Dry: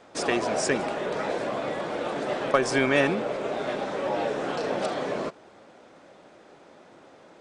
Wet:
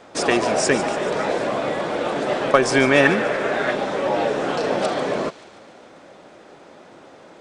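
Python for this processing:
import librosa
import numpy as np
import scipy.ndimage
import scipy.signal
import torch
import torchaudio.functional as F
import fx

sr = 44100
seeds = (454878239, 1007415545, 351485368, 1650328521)

y = fx.peak_eq(x, sr, hz=1700.0, db=11.5, octaves=0.58, at=(3.05, 3.71))
y = fx.echo_wet_highpass(y, sr, ms=144, feedback_pct=61, hz=2400.0, wet_db=-12.0)
y = y * librosa.db_to_amplitude(6.5)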